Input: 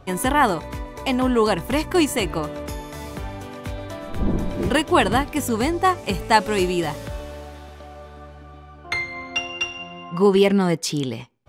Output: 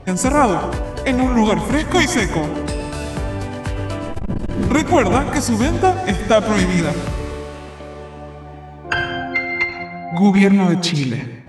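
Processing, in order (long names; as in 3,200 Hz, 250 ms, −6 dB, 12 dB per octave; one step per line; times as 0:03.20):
in parallel at +1 dB: downward compressor, threshold −26 dBFS, peak gain reduction 15 dB
on the sum: formants moved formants −5 semitones
dense smooth reverb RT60 0.88 s, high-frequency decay 0.55×, pre-delay 100 ms, DRR 9 dB
saturating transformer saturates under 160 Hz
level +1.5 dB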